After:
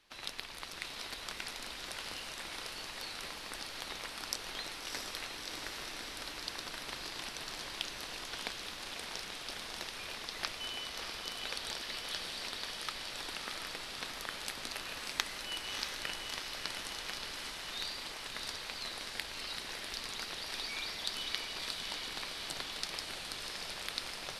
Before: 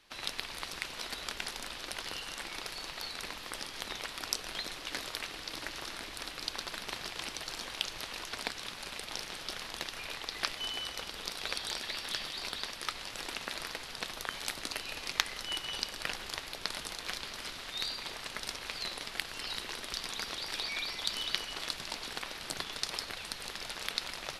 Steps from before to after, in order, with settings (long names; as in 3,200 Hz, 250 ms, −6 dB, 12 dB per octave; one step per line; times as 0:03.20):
on a send: feedback delay with all-pass diffusion 648 ms, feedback 69%, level −4 dB
on the sum: level −4.5 dB